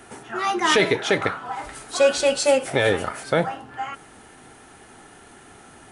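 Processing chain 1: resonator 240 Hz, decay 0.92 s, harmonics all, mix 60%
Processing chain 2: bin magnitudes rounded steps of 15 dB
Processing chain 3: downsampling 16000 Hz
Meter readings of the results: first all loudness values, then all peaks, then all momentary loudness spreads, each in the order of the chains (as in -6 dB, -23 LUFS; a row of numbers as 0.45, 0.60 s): -29.5, -22.5, -22.0 LUFS; -13.0, -6.0, -6.0 dBFS; 15, 15, 15 LU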